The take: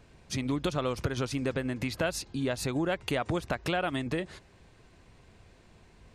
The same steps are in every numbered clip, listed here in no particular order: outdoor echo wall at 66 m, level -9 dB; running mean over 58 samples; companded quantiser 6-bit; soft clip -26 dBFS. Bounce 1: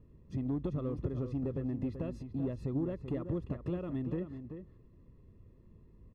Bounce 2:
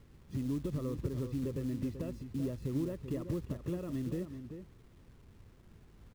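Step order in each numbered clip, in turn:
companded quantiser > running mean > soft clip > outdoor echo; soft clip > running mean > companded quantiser > outdoor echo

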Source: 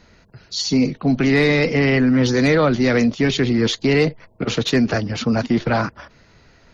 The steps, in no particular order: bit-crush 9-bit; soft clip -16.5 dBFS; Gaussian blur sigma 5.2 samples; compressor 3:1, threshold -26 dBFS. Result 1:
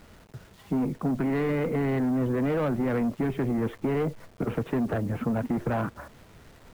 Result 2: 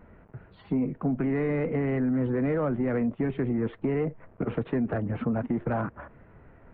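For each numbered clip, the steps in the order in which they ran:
Gaussian blur > soft clip > compressor > bit-crush; bit-crush > Gaussian blur > compressor > soft clip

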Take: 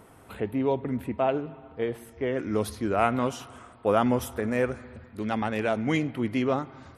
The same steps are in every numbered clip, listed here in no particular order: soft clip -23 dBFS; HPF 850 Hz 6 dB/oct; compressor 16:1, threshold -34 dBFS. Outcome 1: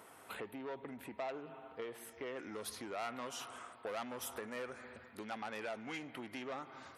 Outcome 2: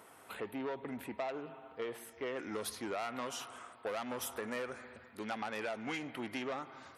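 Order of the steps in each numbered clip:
soft clip > compressor > HPF; soft clip > HPF > compressor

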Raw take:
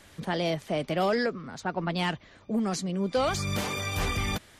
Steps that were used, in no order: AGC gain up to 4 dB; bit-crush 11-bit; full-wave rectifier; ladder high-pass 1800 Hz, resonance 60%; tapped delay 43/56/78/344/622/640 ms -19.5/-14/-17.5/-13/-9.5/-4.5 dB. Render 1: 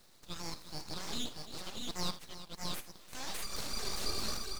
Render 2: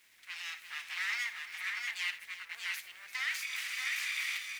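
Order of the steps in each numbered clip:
ladder high-pass > bit-crush > AGC > tapped delay > full-wave rectifier; full-wave rectifier > ladder high-pass > bit-crush > tapped delay > AGC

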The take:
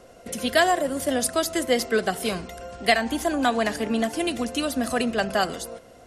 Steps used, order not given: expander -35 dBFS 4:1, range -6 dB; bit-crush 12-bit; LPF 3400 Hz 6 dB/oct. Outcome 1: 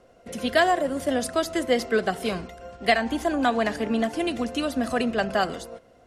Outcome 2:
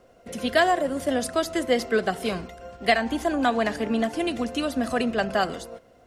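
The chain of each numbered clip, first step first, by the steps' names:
bit-crush > LPF > expander; LPF > bit-crush > expander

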